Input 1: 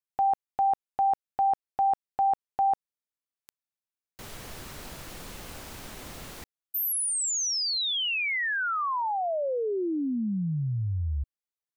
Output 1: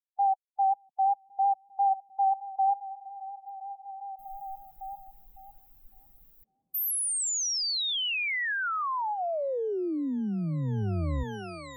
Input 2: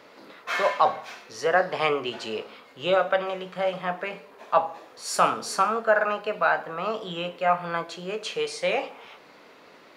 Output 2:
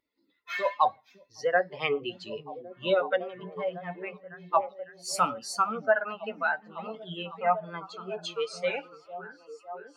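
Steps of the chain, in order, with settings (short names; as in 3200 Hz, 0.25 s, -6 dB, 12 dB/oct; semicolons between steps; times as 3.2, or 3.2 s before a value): per-bin expansion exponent 2; vibrato 5.6 Hz 33 cents; delay with a stepping band-pass 0.555 s, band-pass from 190 Hz, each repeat 0.7 oct, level -6 dB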